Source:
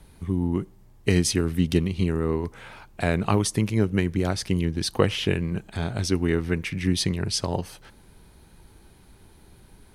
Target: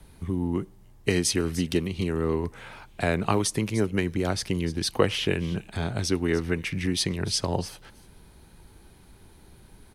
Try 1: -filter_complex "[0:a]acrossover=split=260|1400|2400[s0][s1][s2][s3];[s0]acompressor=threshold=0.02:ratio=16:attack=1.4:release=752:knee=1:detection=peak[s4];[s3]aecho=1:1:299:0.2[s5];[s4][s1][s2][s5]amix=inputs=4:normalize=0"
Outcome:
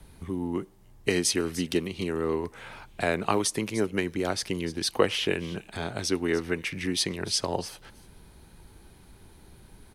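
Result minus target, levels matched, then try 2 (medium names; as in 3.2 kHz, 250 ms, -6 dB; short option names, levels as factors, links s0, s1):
compression: peak gain reduction +10 dB
-filter_complex "[0:a]acrossover=split=260|1400|2400[s0][s1][s2][s3];[s0]acompressor=threshold=0.0668:ratio=16:attack=1.4:release=752:knee=1:detection=peak[s4];[s3]aecho=1:1:299:0.2[s5];[s4][s1][s2][s5]amix=inputs=4:normalize=0"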